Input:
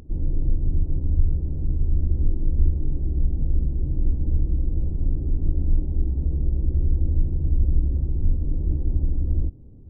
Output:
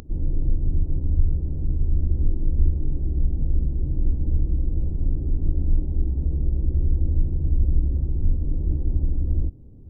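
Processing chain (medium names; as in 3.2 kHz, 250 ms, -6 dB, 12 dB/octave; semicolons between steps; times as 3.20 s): upward compressor, threshold -38 dBFS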